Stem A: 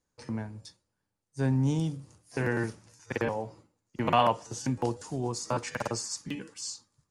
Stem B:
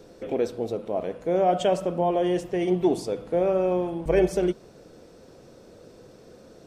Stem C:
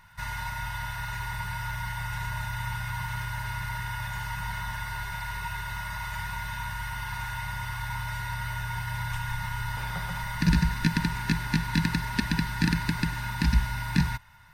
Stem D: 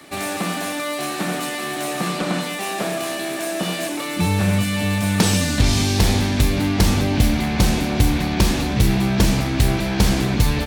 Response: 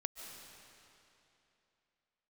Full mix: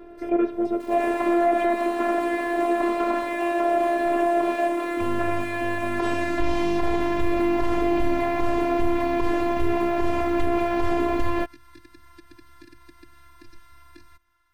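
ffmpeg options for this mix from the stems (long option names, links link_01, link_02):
-filter_complex "[0:a]volume=-9dB,asplit=2[link_01][link_02];[1:a]aeval=exprs='0.376*sin(PI/2*2*val(0)/0.376)':channel_layout=same,lowpass=frequency=2400:width=0.5412,lowpass=frequency=2400:width=1.3066,afade=type=out:start_time=1.67:duration=0.32:silence=0.237137[link_03];[2:a]acrossover=split=790|5900[link_04][link_05][link_06];[link_04]acompressor=threshold=-26dB:ratio=4[link_07];[link_05]acompressor=threshold=-41dB:ratio=4[link_08];[link_06]acompressor=threshold=-52dB:ratio=4[link_09];[link_07][link_08][link_09]amix=inputs=3:normalize=0,volume=-11.5dB,asplit=2[link_10][link_11];[link_11]volume=-23.5dB[link_12];[3:a]equalizer=frequency=500:width_type=o:width=1:gain=7,equalizer=frequency=1000:width_type=o:width=1:gain=7,equalizer=frequency=4000:width_type=o:width=1:gain=-6,acrusher=bits=7:dc=4:mix=0:aa=0.000001,adelay=800,volume=0dB[link_13];[link_02]apad=whole_len=641121[link_14];[link_10][link_14]sidechaincompress=threshold=-51dB:ratio=8:attack=16:release=361[link_15];[4:a]atrim=start_sample=2205[link_16];[link_12][link_16]afir=irnorm=-1:irlink=0[link_17];[link_01][link_03][link_15][link_13][link_17]amix=inputs=5:normalize=0,afftfilt=real='hypot(re,im)*cos(PI*b)':imag='0':win_size=512:overlap=0.75,acrossover=split=3200[link_18][link_19];[link_19]acompressor=threshold=-47dB:ratio=4:attack=1:release=60[link_20];[link_18][link_20]amix=inputs=2:normalize=0,alimiter=limit=-11dB:level=0:latency=1:release=66"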